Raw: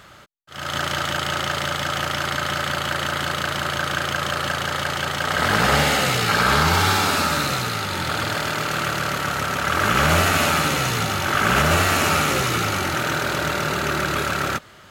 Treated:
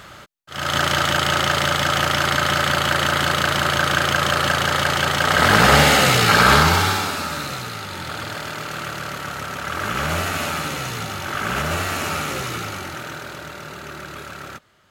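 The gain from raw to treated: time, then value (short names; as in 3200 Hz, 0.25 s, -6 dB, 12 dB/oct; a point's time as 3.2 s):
6.53 s +5 dB
7.16 s -5.5 dB
12.5 s -5.5 dB
13.5 s -12 dB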